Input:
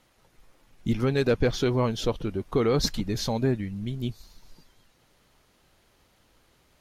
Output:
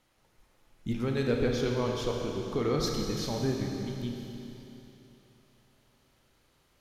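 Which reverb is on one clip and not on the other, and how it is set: Schroeder reverb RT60 3.2 s, combs from 26 ms, DRR 0.5 dB; gain -7 dB

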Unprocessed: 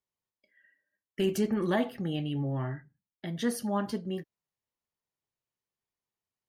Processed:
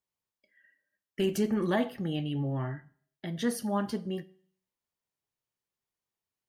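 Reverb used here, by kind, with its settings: Schroeder reverb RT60 0.56 s, combs from 33 ms, DRR 19.5 dB

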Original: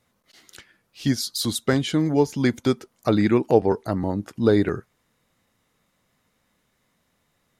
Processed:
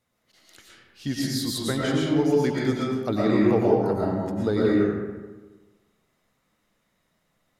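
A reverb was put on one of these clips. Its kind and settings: digital reverb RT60 1.3 s, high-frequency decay 0.55×, pre-delay 75 ms, DRR -5 dB; gain -7.5 dB

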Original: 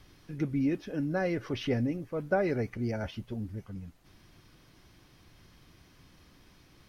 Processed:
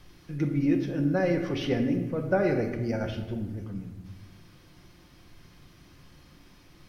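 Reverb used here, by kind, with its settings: shoebox room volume 740 m³, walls mixed, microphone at 0.88 m; gain +2 dB

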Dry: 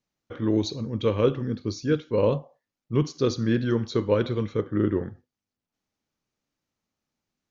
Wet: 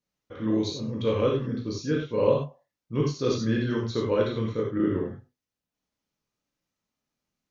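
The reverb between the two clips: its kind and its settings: non-linear reverb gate 0.12 s flat, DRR -2.5 dB; gain -5 dB

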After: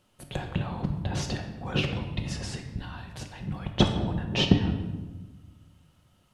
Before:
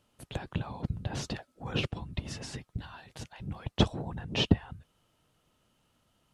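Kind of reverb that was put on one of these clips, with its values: shoebox room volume 730 m³, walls mixed, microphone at 0.99 m; gain +3 dB

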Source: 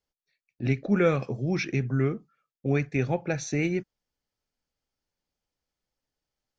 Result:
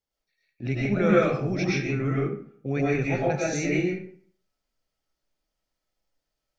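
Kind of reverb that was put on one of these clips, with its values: digital reverb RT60 0.55 s, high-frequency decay 0.7×, pre-delay 75 ms, DRR -6.5 dB; gain -3.5 dB

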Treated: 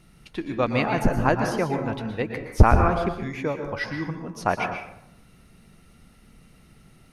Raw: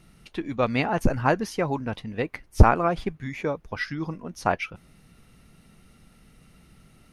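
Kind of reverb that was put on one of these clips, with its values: plate-style reverb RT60 0.79 s, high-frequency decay 0.5×, pre-delay 0.105 s, DRR 4.5 dB

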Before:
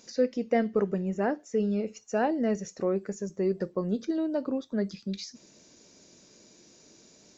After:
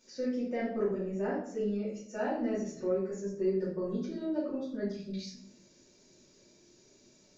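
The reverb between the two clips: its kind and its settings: shoebox room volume 100 m³, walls mixed, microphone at 2.6 m; gain -15.5 dB

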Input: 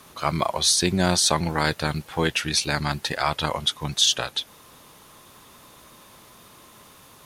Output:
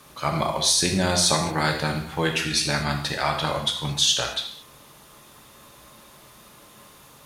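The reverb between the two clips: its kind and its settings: non-linear reverb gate 0.25 s falling, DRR 1.5 dB; gain -2 dB

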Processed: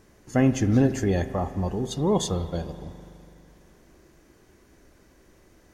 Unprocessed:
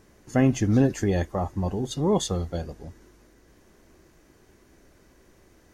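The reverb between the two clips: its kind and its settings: spring tank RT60 2.6 s, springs 41 ms, chirp 60 ms, DRR 11.5 dB

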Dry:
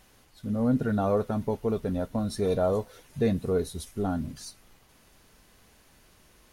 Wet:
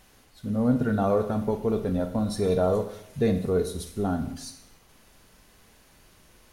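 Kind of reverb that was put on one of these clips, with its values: Schroeder reverb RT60 0.71 s, combs from 33 ms, DRR 8 dB; gain +1.5 dB

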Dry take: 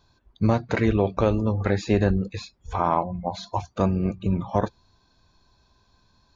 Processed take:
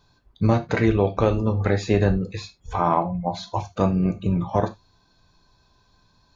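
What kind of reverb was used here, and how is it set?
non-linear reverb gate 0.11 s falling, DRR 7.5 dB; gain +1 dB

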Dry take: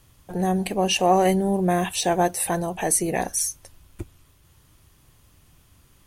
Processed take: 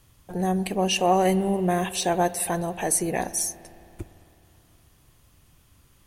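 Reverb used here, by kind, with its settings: spring tank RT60 3.1 s, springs 53 ms, chirp 25 ms, DRR 15.5 dB; gain -2 dB

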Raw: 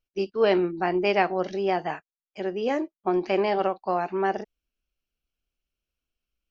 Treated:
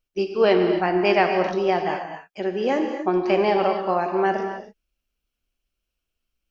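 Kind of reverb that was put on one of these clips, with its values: non-linear reverb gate 0.3 s flat, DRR 4.5 dB; gain +3 dB

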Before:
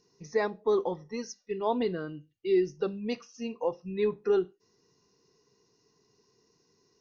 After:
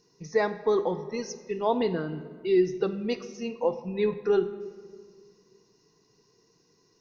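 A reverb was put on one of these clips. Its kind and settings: shoebox room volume 2700 m³, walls mixed, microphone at 0.63 m; gain +3 dB

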